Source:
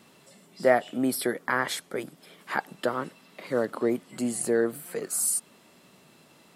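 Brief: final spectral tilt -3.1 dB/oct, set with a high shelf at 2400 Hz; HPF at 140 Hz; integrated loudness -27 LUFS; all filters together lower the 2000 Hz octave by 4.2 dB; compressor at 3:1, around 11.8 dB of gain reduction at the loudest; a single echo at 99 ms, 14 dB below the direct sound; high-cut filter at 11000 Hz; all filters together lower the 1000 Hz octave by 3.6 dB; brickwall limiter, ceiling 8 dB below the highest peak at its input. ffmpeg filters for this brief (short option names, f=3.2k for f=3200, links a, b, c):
-af "highpass=140,lowpass=11k,equalizer=f=1k:t=o:g=-5,equalizer=f=2k:t=o:g=-7,highshelf=f=2.4k:g=8.5,acompressor=threshold=-33dB:ratio=3,alimiter=level_in=3dB:limit=-24dB:level=0:latency=1,volume=-3dB,aecho=1:1:99:0.2,volume=11dB"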